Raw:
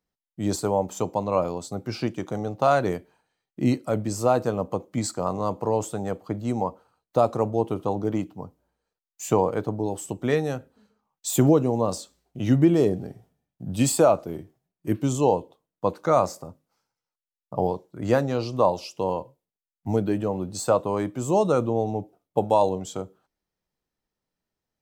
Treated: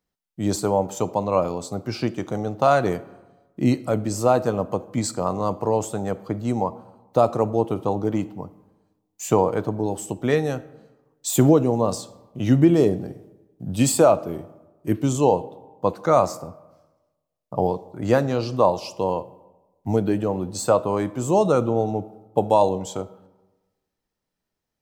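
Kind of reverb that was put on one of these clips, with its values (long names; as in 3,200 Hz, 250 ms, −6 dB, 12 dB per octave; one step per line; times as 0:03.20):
comb and all-pass reverb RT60 1.2 s, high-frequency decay 0.55×, pre-delay 5 ms, DRR 17.5 dB
level +2.5 dB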